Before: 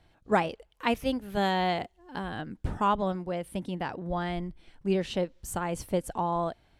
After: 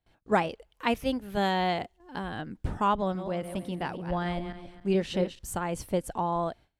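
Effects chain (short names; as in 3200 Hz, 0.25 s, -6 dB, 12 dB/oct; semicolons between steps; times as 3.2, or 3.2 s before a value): 3.01–5.39 regenerating reverse delay 0.138 s, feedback 46%, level -9 dB; gate with hold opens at -51 dBFS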